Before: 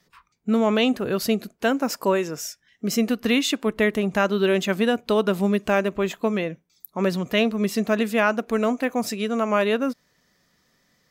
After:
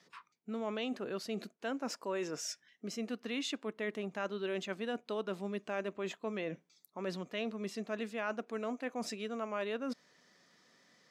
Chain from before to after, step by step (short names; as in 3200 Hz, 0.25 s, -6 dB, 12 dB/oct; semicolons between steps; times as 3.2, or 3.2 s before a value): reverse; compressor 4:1, threshold -37 dBFS, peak gain reduction 18 dB; reverse; BPF 220–7400 Hz